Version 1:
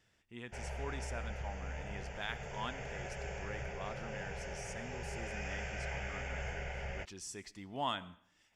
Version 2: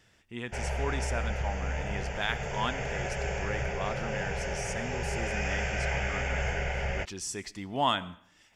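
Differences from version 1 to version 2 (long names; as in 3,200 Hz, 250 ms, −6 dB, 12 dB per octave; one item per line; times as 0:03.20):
speech +9.5 dB
background +10.0 dB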